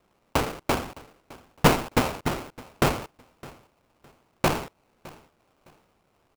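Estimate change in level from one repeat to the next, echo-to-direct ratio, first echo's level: -11.5 dB, -21.0 dB, -21.5 dB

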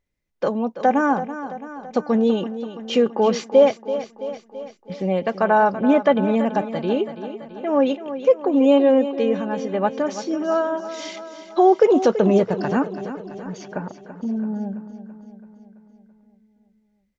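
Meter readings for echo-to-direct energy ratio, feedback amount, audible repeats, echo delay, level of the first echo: -10.0 dB, 59%, 6, 0.333 s, -12.0 dB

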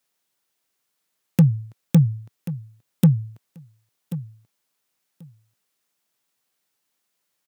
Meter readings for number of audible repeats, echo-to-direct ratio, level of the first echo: 2, -14.5 dB, -14.5 dB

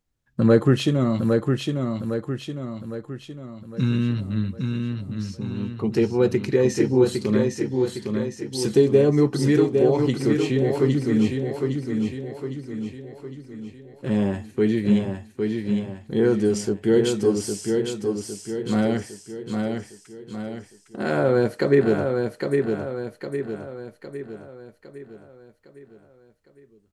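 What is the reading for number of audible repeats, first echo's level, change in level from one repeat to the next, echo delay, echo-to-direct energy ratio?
5, -4.5 dB, -6.0 dB, 0.808 s, -3.5 dB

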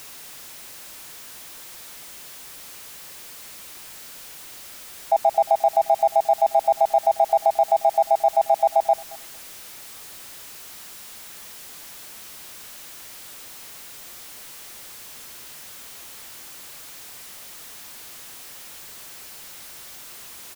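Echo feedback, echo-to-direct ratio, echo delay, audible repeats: no steady repeat, -23.0 dB, 0.224 s, 1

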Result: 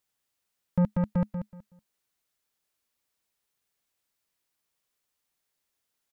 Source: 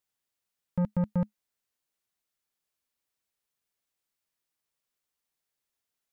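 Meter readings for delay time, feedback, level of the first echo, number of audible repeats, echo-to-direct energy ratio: 0.187 s, 22%, -9.0 dB, 2, -9.0 dB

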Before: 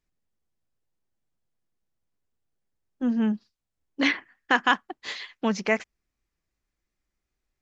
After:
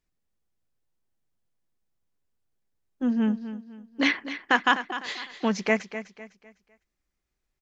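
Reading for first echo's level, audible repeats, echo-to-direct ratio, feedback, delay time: -12.0 dB, 3, -11.5 dB, 35%, 0.252 s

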